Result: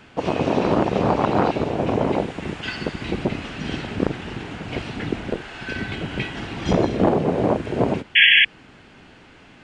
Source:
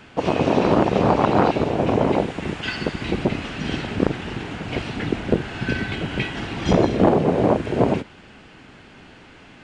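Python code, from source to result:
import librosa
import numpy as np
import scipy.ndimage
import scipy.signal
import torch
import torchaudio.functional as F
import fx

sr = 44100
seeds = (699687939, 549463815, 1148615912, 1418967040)

y = fx.peak_eq(x, sr, hz=130.0, db=-11.0, octaves=2.8, at=(5.3, 5.76))
y = fx.spec_paint(y, sr, seeds[0], shape='noise', start_s=8.15, length_s=0.3, low_hz=1600.0, high_hz=3400.0, level_db=-11.0)
y = F.gain(torch.from_numpy(y), -2.0).numpy()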